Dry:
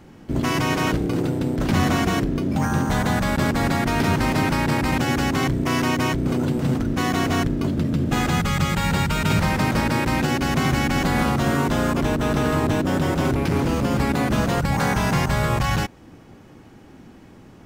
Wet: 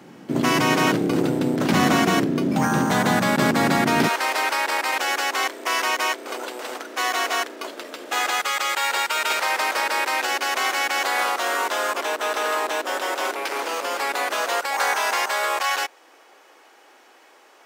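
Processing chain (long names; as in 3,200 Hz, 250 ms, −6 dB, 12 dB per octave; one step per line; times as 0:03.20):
Bessel high-pass filter 210 Hz, order 6, from 0:04.07 710 Hz
level +4 dB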